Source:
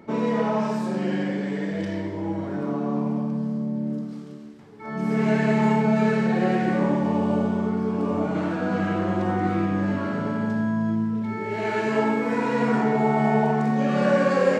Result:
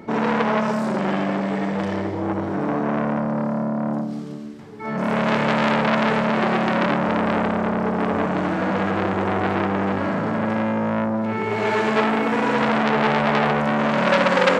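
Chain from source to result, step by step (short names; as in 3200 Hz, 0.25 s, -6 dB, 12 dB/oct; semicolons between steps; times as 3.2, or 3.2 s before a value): core saturation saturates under 2200 Hz; gain +7.5 dB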